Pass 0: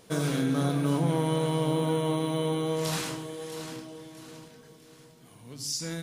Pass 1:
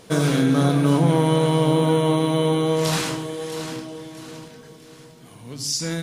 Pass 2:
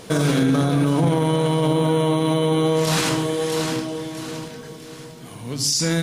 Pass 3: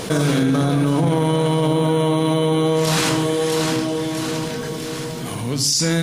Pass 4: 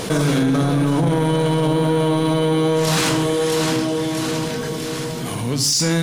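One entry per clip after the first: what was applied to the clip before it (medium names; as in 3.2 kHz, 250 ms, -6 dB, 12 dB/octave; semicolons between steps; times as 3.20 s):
treble shelf 11 kHz -6.5 dB; trim +8.5 dB
peak limiter -17.5 dBFS, peak gain reduction 11.5 dB; trim +7 dB
level flattener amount 50%
saturation -12.5 dBFS, distortion -18 dB; trim +2 dB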